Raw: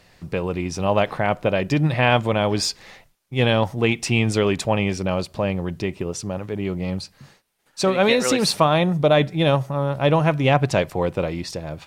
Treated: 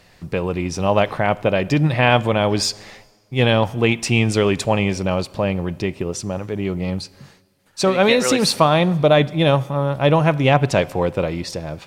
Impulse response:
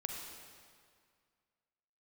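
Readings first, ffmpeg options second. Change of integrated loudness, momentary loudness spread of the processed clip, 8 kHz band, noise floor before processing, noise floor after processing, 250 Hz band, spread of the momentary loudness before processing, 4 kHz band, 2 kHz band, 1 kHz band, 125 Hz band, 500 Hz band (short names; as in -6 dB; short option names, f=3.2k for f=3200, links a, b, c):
+2.5 dB, 11 LU, +2.5 dB, -60 dBFS, -53 dBFS, +2.5 dB, 11 LU, +2.5 dB, +2.5 dB, +2.5 dB, +2.5 dB, +2.5 dB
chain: -filter_complex "[0:a]asplit=2[a][b];[1:a]atrim=start_sample=2205,asetrate=52920,aresample=44100[c];[b][c]afir=irnorm=-1:irlink=0,volume=-15.5dB[d];[a][d]amix=inputs=2:normalize=0,volume=1.5dB"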